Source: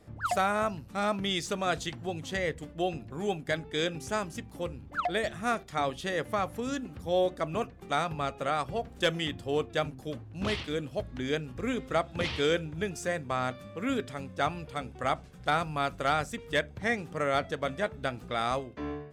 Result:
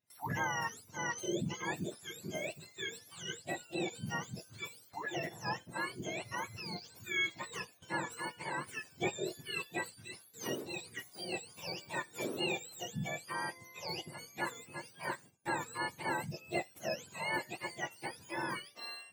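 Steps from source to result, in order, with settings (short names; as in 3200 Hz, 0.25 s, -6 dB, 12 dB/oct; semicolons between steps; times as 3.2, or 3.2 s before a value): spectrum mirrored in octaves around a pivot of 1100 Hz; gate with hold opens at -42 dBFS; gain -6 dB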